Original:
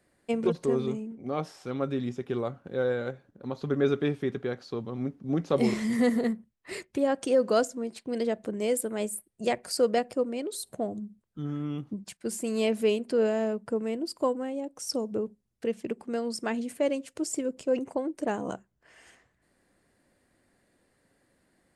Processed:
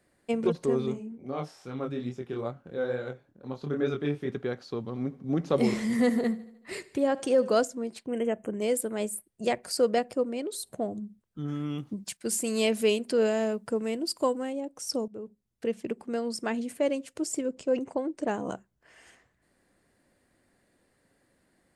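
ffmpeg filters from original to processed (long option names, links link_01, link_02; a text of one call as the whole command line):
ffmpeg -i in.wav -filter_complex "[0:a]asplit=3[link_01][link_02][link_03];[link_01]afade=type=out:start_time=0.93:duration=0.02[link_04];[link_02]flanger=delay=22.5:depth=5:speed=2.3,afade=type=in:start_time=0.93:duration=0.02,afade=type=out:start_time=4.28:duration=0.02[link_05];[link_03]afade=type=in:start_time=4.28:duration=0.02[link_06];[link_04][link_05][link_06]amix=inputs=3:normalize=0,asplit=3[link_07][link_08][link_09];[link_07]afade=type=out:start_time=4.86:duration=0.02[link_10];[link_08]aecho=1:1:76|152|228|304|380:0.112|0.064|0.0365|0.0208|0.0118,afade=type=in:start_time=4.86:duration=0.02,afade=type=out:start_time=7.56:duration=0.02[link_11];[link_09]afade=type=in:start_time=7.56:duration=0.02[link_12];[link_10][link_11][link_12]amix=inputs=3:normalize=0,asplit=3[link_13][link_14][link_15];[link_13]afade=type=out:start_time=8.06:duration=0.02[link_16];[link_14]asuperstop=centerf=4400:order=20:qfactor=1.6,afade=type=in:start_time=8.06:duration=0.02,afade=type=out:start_time=8.6:duration=0.02[link_17];[link_15]afade=type=in:start_time=8.6:duration=0.02[link_18];[link_16][link_17][link_18]amix=inputs=3:normalize=0,asettb=1/sr,asplit=3[link_19][link_20][link_21];[link_19]atrim=end=11.484[link_22];[link_20]atrim=start=11.48:end=14.53,asetpts=PTS-STARTPTS,afade=type=in:duration=0.004:curve=qsin,afade=type=out:start_time=3.046:duration=0.004:curve=qsin,highshelf=frequency=2400:gain=8[link_23];[link_21]atrim=start=14.526[link_24];[link_22][link_23]acrossfade=duration=0.004:curve1=hsin:curve2=qsin[link_25];[link_25][link_24]acrossfade=duration=0.004:curve1=qsin:curve2=hsin,asettb=1/sr,asplit=3[link_26][link_27][link_28];[link_26]atrim=end=17.414[link_29];[link_27]atrim=start=17.41:end=18.46,asetpts=PTS-STARTPTS,afade=type=in:duration=0.004:curve=qsin,afade=type=out:start_time=1.046:duration=0.004:curve=qsin,lowpass=frequency=8700:width=0.5412,lowpass=frequency=8700:width=1.3066[link_30];[link_28]atrim=start=18.456[link_31];[link_29][link_30]acrossfade=duration=0.004:curve1=hsin:curve2=qsin[link_32];[link_32][link_31]acrossfade=duration=0.004:curve1=qsin:curve2=hsin,asplit=2[link_33][link_34];[link_33]atrim=end=15.08,asetpts=PTS-STARTPTS,afade=type=out:start_time=15.076:duration=0.004:curve=hsin:silence=0.16788[link_35];[link_34]atrim=start=15.08,asetpts=PTS-STARTPTS,afade=type=in:duration=0.58:silence=0.16788[link_36];[link_35][link_36]concat=n=2:v=0:a=1" out.wav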